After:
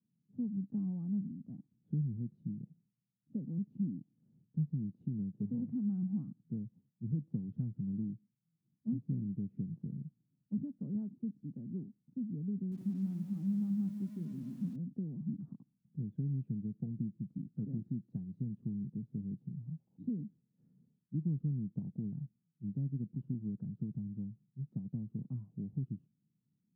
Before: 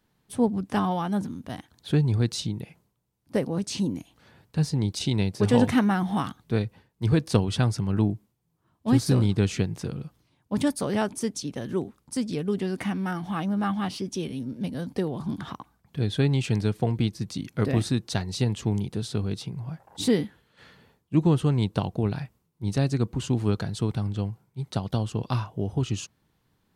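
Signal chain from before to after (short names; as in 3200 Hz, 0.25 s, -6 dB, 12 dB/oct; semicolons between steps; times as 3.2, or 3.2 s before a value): compressor 4:1, threshold -23 dBFS, peak gain reduction 8 dB; Butterworth band-pass 180 Hz, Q 1.6; 12.55–14.76 lo-fi delay 0.168 s, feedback 55%, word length 9-bit, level -10 dB; gain -6 dB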